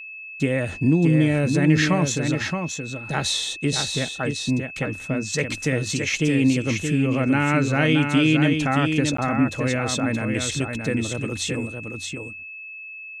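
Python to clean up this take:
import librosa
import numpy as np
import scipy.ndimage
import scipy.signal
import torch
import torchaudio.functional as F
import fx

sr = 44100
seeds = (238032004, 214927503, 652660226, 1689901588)

y = fx.notch(x, sr, hz=2600.0, q=30.0)
y = fx.fix_interpolate(y, sr, at_s=(9.17,), length_ms=14.0)
y = fx.fix_echo_inverse(y, sr, delay_ms=623, level_db=-5.5)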